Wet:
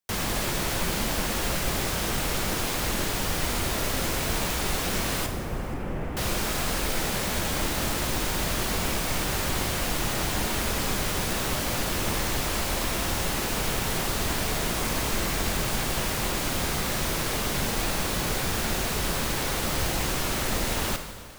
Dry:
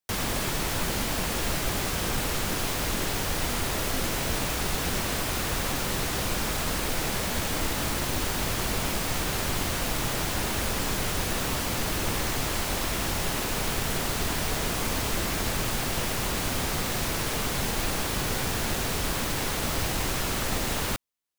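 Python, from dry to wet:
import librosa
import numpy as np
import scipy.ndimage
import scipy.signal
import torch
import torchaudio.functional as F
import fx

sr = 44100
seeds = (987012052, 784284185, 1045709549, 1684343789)

y = fx.delta_mod(x, sr, bps=16000, step_db=-45.0, at=(5.26, 6.17))
y = fx.echo_feedback(y, sr, ms=477, feedback_pct=43, wet_db=-21)
y = fx.rev_plate(y, sr, seeds[0], rt60_s=1.5, hf_ratio=0.95, predelay_ms=0, drr_db=6.0)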